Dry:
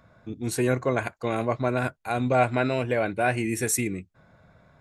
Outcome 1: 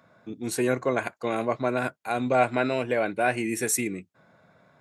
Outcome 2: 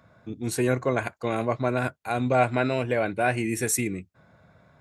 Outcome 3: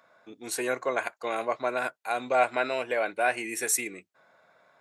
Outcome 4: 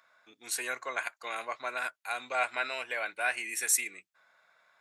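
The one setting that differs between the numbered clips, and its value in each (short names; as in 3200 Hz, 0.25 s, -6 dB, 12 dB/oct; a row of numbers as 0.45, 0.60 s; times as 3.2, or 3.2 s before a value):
HPF, cutoff: 180, 65, 530, 1300 Hz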